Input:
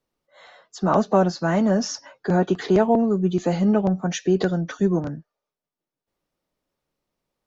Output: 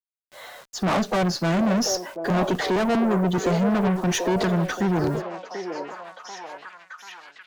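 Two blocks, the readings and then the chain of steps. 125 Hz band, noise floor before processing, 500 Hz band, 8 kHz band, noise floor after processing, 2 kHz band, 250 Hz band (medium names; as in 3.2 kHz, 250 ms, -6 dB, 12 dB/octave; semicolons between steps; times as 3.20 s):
-0.5 dB, under -85 dBFS, -2.5 dB, no reading, -61 dBFS, +4.0 dB, -1.5 dB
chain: bit crusher 9-bit; valve stage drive 27 dB, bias 0.3; repeats whose band climbs or falls 738 ms, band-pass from 500 Hz, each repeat 0.7 oct, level -2.5 dB; trim +7.5 dB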